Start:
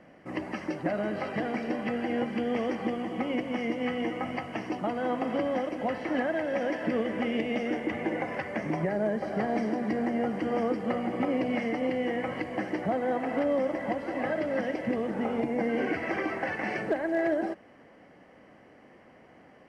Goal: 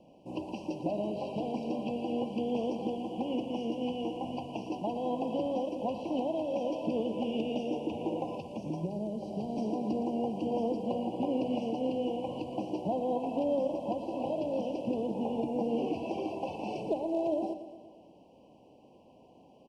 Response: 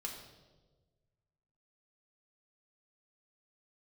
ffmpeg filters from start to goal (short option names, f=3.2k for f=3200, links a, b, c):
-filter_complex "[0:a]asettb=1/sr,asplit=3[a][b][c];[a]atrim=end=8.364[d];[b]atrim=start=8.36:end=9.58,asetpts=PTS-STARTPTS,afade=t=in:d=0.004:c=qsin,afade=t=out:st=1.216:d=0.004:c=qsin,acrossover=split=310|3000[e][f][g];[f]acompressor=threshold=-39dB:ratio=3[h];[e][h][g]amix=inputs=3:normalize=0[i];[c]atrim=start=9.576[j];[d][i]acrossfade=d=0.004:c1=hsin:c2=qsin[k];[k][j]acrossfade=d=0.004:c1=qsin:c2=hsin,asuperstop=centerf=1600:order=20:qfactor=1.1,aecho=1:1:116|232|348|464|580|696|812:0.251|0.151|0.0904|0.0543|0.0326|0.0195|0.0117,volume=-3dB"